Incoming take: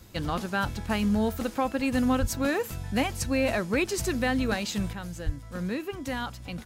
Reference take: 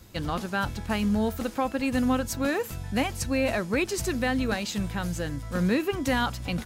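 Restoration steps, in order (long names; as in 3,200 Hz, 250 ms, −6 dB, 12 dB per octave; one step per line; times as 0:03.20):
clipped peaks rebuilt −16.5 dBFS
0:02.20–0:02.32: high-pass filter 140 Hz 24 dB per octave
0:05.25–0:05.37: high-pass filter 140 Hz 24 dB per octave
level 0 dB, from 0:04.93 +7 dB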